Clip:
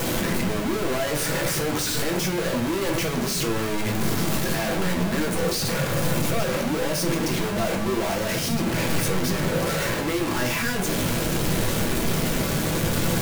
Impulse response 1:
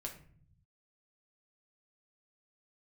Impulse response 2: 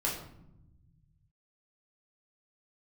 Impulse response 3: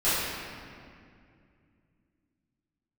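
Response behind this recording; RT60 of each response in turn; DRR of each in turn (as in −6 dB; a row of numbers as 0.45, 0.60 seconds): 1; 0.50, 0.85, 2.3 seconds; 0.5, −4.5, −14.5 decibels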